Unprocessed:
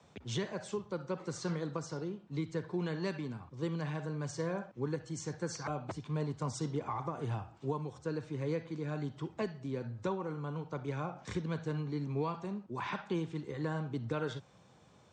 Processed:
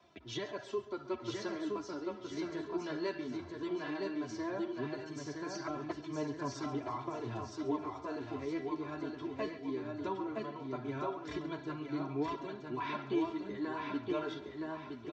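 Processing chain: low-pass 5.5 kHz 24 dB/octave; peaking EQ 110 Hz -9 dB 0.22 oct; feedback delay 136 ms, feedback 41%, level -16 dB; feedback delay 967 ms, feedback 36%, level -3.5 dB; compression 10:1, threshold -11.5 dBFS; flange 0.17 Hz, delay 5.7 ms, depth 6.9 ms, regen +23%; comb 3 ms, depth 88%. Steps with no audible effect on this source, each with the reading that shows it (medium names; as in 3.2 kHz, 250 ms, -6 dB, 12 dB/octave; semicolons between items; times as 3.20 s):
compression, threshold -11.5 dBFS: peak at its input -20.0 dBFS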